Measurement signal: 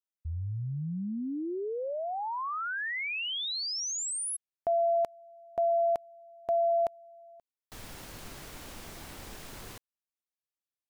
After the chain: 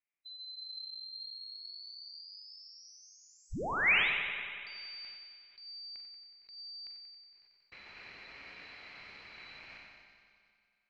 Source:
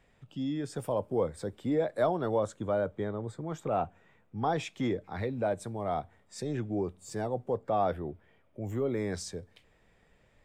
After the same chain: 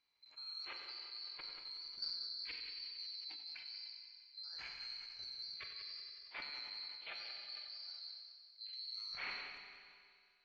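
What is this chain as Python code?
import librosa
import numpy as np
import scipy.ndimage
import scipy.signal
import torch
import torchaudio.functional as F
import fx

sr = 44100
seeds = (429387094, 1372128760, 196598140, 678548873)

y = fx.band_swap(x, sr, width_hz=4000)
y = fx.level_steps(y, sr, step_db=12)
y = fx.ladder_lowpass(y, sr, hz=2500.0, resonance_pct=70)
y = fx.echo_heads(y, sr, ms=92, heads='first and second', feedback_pct=62, wet_db=-12)
y = fx.rev_schroeder(y, sr, rt60_s=1.9, comb_ms=33, drr_db=4.0)
y = fx.sustainer(y, sr, db_per_s=35.0)
y = y * librosa.db_to_amplitude(10.0)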